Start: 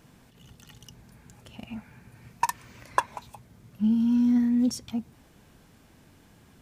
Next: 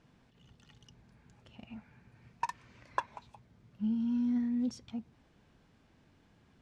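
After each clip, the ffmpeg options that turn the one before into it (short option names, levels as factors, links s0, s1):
-af "lowpass=4900,volume=0.355"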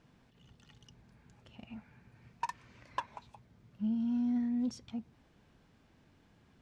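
-af "asoftclip=type=tanh:threshold=0.0668"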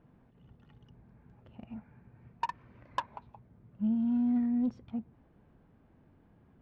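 -af "adynamicsmooth=sensitivity=4:basefreq=1400,volume=1.5"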